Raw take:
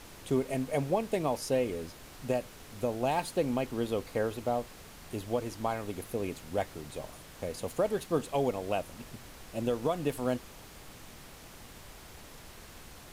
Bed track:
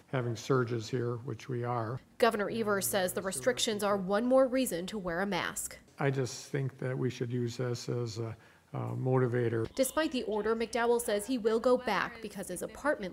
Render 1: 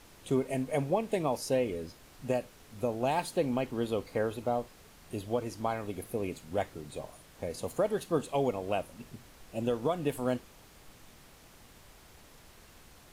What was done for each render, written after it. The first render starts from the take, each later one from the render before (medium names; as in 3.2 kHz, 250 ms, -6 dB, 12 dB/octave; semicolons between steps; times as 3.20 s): noise print and reduce 6 dB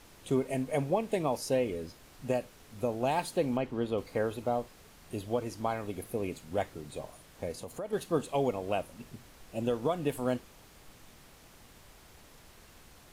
3.57–3.98 s: low-pass 3.1 kHz 6 dB/octave; 7.52–7.93 s: compression 2:1, threshold -42 dBFS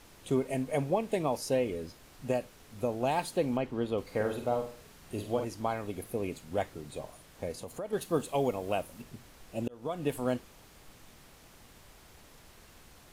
4.02–5.45 s: flutter echo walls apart 8.2 m, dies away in 0.44 s; 8.01–9.02 s: treble shelf 11 kHz +9 dB; 9.68–10.08 s: fade in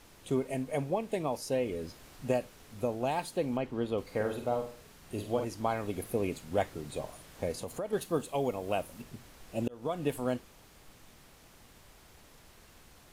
gain riding within 3 dB 0.5 s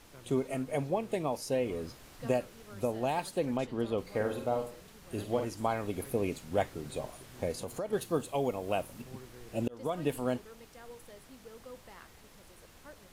add bed track -22 dB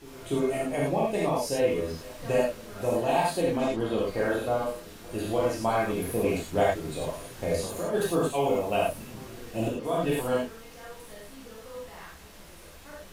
reverse echo 291 ms -21 dB; gated-style reverb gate 130 ms flat, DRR -6.5 dB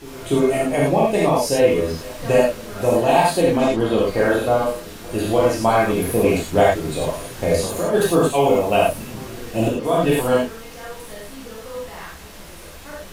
trim +9.5 dB; peak limiter -3 dBFS, peak gain reduction 1 dB